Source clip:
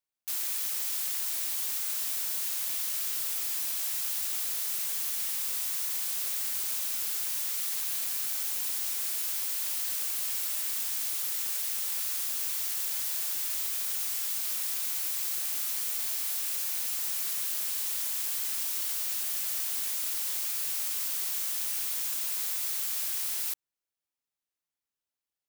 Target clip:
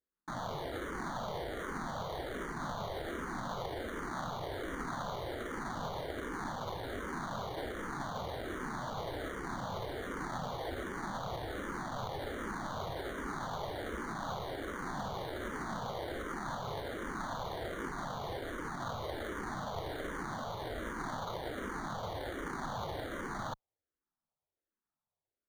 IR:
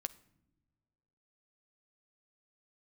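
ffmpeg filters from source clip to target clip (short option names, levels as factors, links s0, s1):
-filter_complex "[0:a]acrusher=samples=17:mix=1:aa=0.000001,lowpass=f=2800:p=1,asplit=2[s0][s1];[s1]afreqshift=-1.3[s2];[s0][s2]amix=inputs=2:normalize=1,volume=0.631"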